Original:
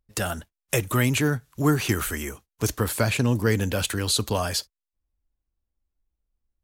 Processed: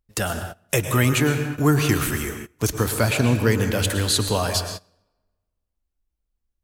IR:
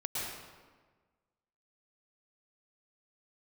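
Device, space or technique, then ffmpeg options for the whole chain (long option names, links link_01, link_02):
keyed gated reverb: -filter_complex "[0:a]asplit=3[link_01][link_02][link_03];[1:a]atrim=start_sample=2205[link_04];[link_02][link_04]afir=irnorm=-1:irlink=0[link_05];[link_03]apad=whole_len=292418[link_06];[link_05][link_06]sidechaingate=range=-22dB:threshold=-48dB:ratio=16:detection=peak,volume=-7.5dB[link_07];[link_01][link_07]amix=inputs=2:normalize=0"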